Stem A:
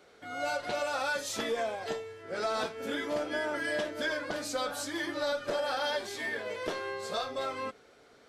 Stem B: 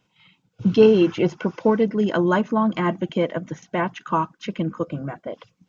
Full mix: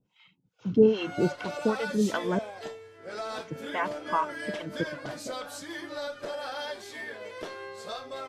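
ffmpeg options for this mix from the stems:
ffmpeg -i stem1.wav -i stem2.wav -filter_complex "[0:a]adelay=750,volume=-4dB[link_01];[1:a]acrossover=split=570[link_02][link_03];[link_02]aeval=exprs='val(0)*(1-1/2+1/2*cos(2*PI*2.5*n/s))':channel_layout=same[link_04];[link_03]aeval=exprs='val(0)*(1-1/2-1/2*cos(2*PI*2.5*n/s))':channel_layout=same[link_05];[link_04][link_05]amix=inputs=2:normalize=0,volume=-3dB,asplit=3[link_06][link_07][link_08];[link_06]atrim=end=2.39,asetpts=PTS-STARTPTS,afade=type=out:start_time=2.386:duration=0.004:curve=hsin[link_09];[link_07]atrim=start=2.39:end=3.45,asetpts=PTS-STARTPTS,volume=0[link_10];[link_08]atrim=start=3.45,asetpts=PTS-STARTPTS,afade=type=in:duration=0.004:curve=hsin[link_11];[link_09][link_10][link_11]concat=n=3:v=0:a=1[link_12];[link_01][link_12]amix=inputs=2:normalize=0" out.wav

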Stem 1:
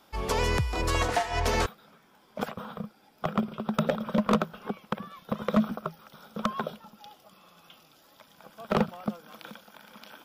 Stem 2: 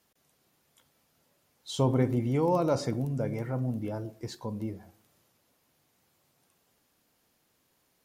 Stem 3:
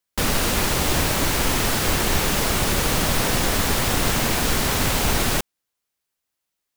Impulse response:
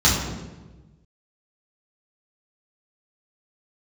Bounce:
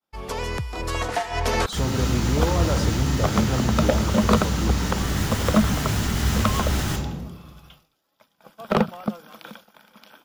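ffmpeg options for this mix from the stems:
-filter_complex "[0:a]volume=-2.5dB[link_01];[1:a]alimiter=limit=-23dB:level=0:latency=1,volume=-2.5dB,asplit=2[link_02][link_03];[2:a]alimiter=limit=-19dB:level=0:latency=1:release=121,adelay=1550,volume=-10.5dB,asplit=2[link_04][link_05];[link_05]volume=-17dB[link_06];[link_03]apad=whole_len=366651[link_07];[link_04][link_07]sidechaincompress=threshold=-41dB:ratio=8:attack=16:release=656[link_08];[3:a]atrim=start_sample=2205[link_09];[link_06][link_09]afir=irnorm=-1:irlink=0[link_10];[link_01][link_02][link_08][link_10]amix=inputs=4:normalize=0,agate=range=-33dB:threshold=-48dB:ratio=3:detection=peak,dynaudnorm=framelen=510:gausssize=5:maxgain=7.5dB"

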